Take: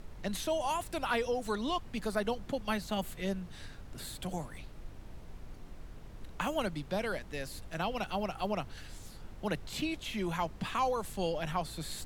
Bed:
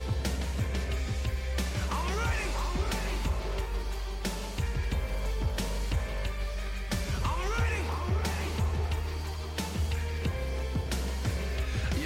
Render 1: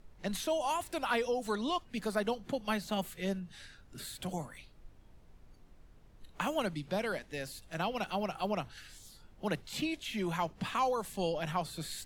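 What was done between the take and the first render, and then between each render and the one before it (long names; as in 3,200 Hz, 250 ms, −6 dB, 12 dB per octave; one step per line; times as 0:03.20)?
noise reduction from a noise print 11 dB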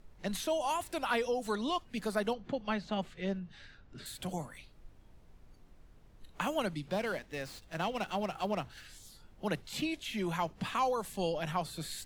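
0:02.33–0:04.06: high-frequency loss of the air 140 metres
0:06.88–0:08.86: windowed peak hold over 3 samples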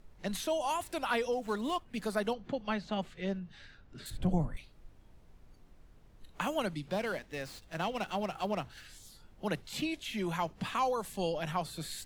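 0:01.31–0:01.96: running median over 9 samples
0:04.10–0:04.57: spectral tilt −4 dB per octave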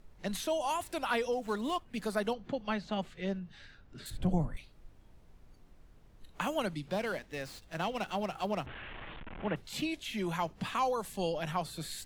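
0:08.66–0:09.56: linear delta modulator 16 kbit/s, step −38 dBFS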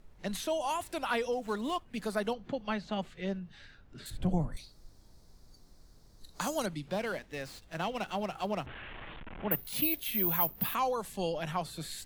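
0:04.52–0:06.66: high shelf with overshoot 3,600 Hz +8 dB, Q 3
0:09.51–0:10.75: bad sample-rate conversion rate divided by 3×, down filtered, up zero stuff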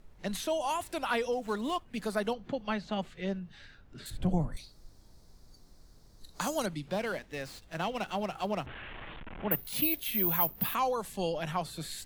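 level +1 dB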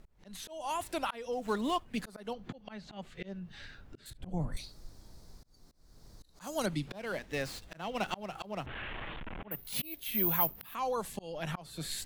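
volume swells 371 ms
speech leveller within 4 dB 2 s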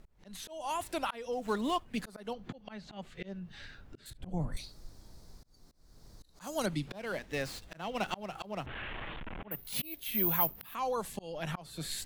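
no processing that can be heard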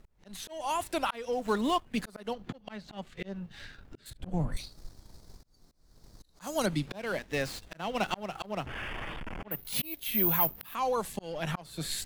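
leveller curve on the samples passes 1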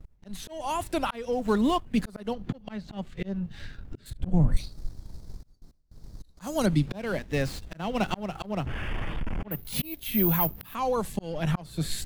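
noise gate with hold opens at −51 dBFS
low-shelf EQ 290 Hz +12 dB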